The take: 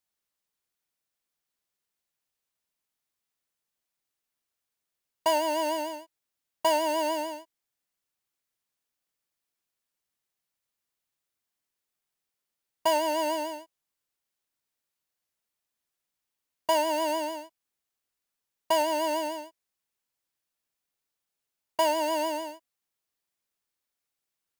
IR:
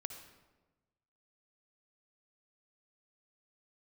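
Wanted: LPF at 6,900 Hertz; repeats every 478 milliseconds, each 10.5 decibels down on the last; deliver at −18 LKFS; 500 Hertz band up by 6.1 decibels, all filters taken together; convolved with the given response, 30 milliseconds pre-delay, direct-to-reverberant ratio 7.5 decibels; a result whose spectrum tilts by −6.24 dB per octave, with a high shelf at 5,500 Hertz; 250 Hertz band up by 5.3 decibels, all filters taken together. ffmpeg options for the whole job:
-filter_complex "[0:a]lowpass=6900,equalizer=frequency=250:width_type=o:gain=3.5,equalizer=frequency=500:width_type=o:gain=8,highshelf=frequency=5500:gain=8,aecho=1:1:478|956|1434:0.299|0.0896|0.0269,asplit=2[link_01][link_02];[1:a]atrim=start_sample=2205,adelay=30[link_03];[link_02][link_03]afir=irnorm=-1:irlink=0,volume=-5.5dB[link_04];[link_01][link_04]amix=inputs=2:normalize=0,volume=6dB"

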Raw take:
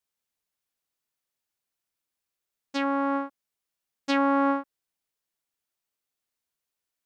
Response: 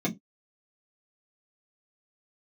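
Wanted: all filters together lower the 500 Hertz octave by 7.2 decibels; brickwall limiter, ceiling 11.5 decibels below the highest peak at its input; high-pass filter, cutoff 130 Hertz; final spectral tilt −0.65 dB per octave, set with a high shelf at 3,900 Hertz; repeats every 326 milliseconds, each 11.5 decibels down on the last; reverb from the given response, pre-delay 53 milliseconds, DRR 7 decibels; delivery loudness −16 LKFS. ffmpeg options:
-filter_complex "[0:a]highpass=130,equalizer=frequency=500:width_type=o:gain=-8,highshelf=frequency=3900:gain=5.5,alimiter=limit=-21.5dB:level=0:latency=1,aecho=1:1:326|652|978:0.266|0.0718|0.0194,asplit=2[link_01][link_02];[1:a]atrim=start_sample=2205,adelay=53[link_03];[link_02][link_03]afir=irnorm=-1:irlink=0,volume=-14.5dB[link_04];[link_01][link_04]amix=inputs=2:normalize=0,volume=16.5dB"

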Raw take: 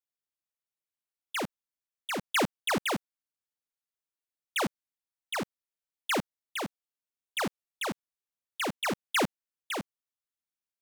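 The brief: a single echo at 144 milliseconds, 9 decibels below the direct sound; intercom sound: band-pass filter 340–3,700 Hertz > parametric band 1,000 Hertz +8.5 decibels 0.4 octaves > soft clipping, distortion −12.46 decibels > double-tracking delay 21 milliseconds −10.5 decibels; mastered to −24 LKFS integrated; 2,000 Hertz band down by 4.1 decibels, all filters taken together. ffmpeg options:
ffmpeg -i in.wav -filter_complex "[0:a]highpass=340,lowpass=3700,equalizer=frequency=1000:width_type=o:width=0.4:gain=8.5,equalizer=frequency=2000:width_type=o:gain=-5.5,aecho=1:1:144:0.355,asoftclip=threshold=-25dB,asplit=2[link_01][link_02];[link_02]adelay=21,volume=-10.5dB[link_03];[link_01][link_03]amix=inputs=2:normalize=0,volume=12dB" out.wav

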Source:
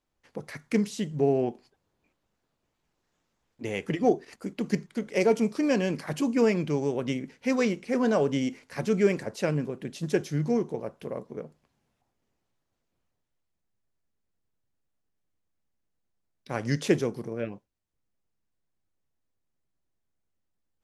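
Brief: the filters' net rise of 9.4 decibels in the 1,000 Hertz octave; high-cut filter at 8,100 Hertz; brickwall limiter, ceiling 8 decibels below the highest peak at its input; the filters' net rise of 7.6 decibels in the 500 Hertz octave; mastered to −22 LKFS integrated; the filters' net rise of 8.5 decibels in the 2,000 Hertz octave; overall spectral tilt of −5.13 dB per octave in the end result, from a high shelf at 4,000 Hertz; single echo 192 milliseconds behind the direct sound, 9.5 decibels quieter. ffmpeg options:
ffmpeg -i in.wav -af "lowpass=8100,equalizer=frequency=500:width_type=o:gain=7,equalizer=frequency=1000:width_type=o:gain=8.5,equalizer=frequency=2000:width_type=o:gain=6.5,highshelf=frequency=4000:gain=4.5,alimiter=limit=-11.5dB:level=0:latency=1,aecho=1:1:192:0.335,volume=2.5dB" out.wav

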